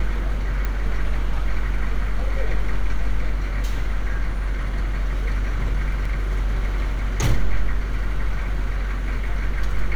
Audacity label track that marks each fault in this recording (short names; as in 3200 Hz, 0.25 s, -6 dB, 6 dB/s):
0.650000	0.650000	pop -13 dBFS
6.050000	6.050000	gap 3.9 ms